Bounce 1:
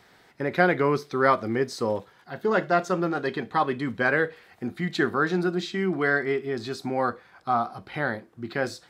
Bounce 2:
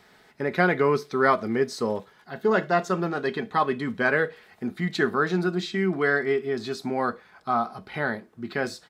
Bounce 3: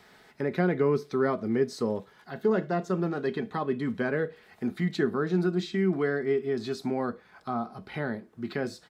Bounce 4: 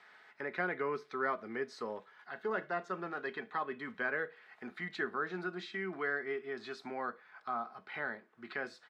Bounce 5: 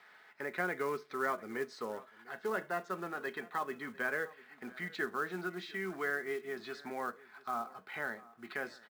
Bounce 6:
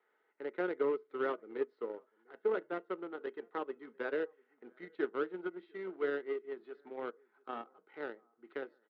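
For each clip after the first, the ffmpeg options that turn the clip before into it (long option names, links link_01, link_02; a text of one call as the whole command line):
ffmpeg -i in.wav -af "aecho=1:1:4.7:0.35" out.wav
ffmpeg -i in.wav -filter_complex "[0:a]acrossover=split=490[link_01][link_02];[link_02]acompressor=threshold=-42dB:ratio=2[link_03];[link_01][link_03]amix=inputs=2:normalize=0" out.wav
ffmpeg -i in.wav -af "bandpass=frequency=1600:width_type=q:width=1.1:csg=0" out.wav
ffmpeg -i in.wav -af "acrusher=bits=5:mode=log:mix=0:aa=0.000001,aecho=1:1:699:0.0891" out.wav
ffmpeg -i in.wav -af "aeval=exprs='0.0944*(cos(1*acos(clip(val(0)/0.0944,-1,1)))-cos(1*PI/2))+0.0106*(cos(7*acos(clip(val(0)/0.0944,-1,1)))-cos(7*PI/2))':channel_layout=same,highpass=310,equalizer=frequency=320:width_type=q:width=4:gain=9,equalizer=frequency=460:width_type=q:width=4:gain=8,equalizer=frequency=700:width_type=q:width=4:gain=-7,equalizer=frequency=1100:width_type=q:width=4:gain=-7,equalizer=frequency=1700:width_type=q:width=4:gain=-10,equalizer=frequency=2400:width_type=q:width=4:gain=-10,lowpass=frequency=2500:width=0.5412,lowpass=frequency=2500:width=1.3066,volume=2.5dB" out.wav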